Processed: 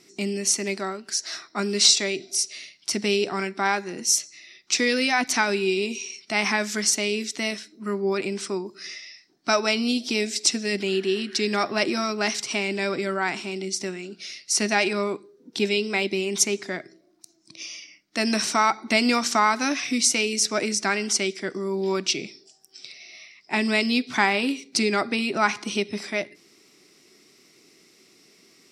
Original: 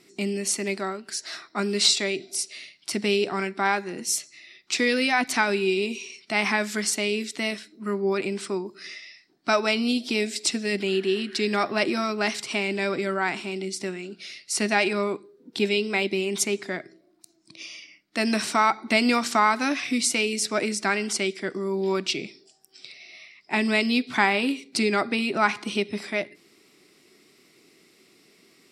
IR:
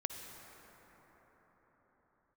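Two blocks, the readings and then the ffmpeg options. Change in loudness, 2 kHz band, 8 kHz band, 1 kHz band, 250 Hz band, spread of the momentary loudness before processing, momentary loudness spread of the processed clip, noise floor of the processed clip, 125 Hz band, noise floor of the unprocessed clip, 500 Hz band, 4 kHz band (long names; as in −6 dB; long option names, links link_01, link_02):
+1.0 dB, 0.0 dB, +5.0 dB, 0.0 dB, 0.0 dB, 12 LU, 13 LU, −58 dBFS, 0.0 dB, −60 dBFS, 0.0 dB, +2.5 dB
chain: -af "equalizer=frequency=5900:width_type=o:width=0.46:gain=8.5"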